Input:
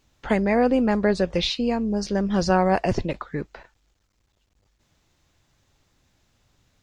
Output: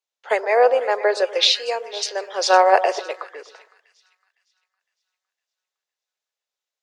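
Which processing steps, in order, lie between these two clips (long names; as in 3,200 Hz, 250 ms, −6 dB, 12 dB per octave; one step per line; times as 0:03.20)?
Butterworth high-pass 430 Hz 48 dB per octave
on a send: echo with a time of its own for lows and highs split 1,300 Hz, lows 123 ms, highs 509 ms, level −12 dB
on the sum: multiband upward and downward expander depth 70%
level +4.5 dB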